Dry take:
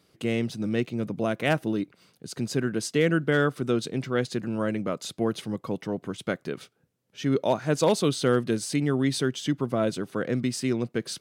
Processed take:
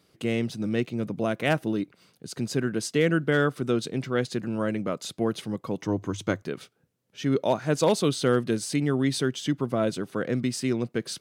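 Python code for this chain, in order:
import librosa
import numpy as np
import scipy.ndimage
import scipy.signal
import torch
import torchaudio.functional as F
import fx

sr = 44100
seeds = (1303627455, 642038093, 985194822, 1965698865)

y = fx.graphic_eq_31(x, sr, hz=(100, 315, 1000, 6300, 10000), db=(12, 7, 7, 11, -4), at=(5.78, 6.42))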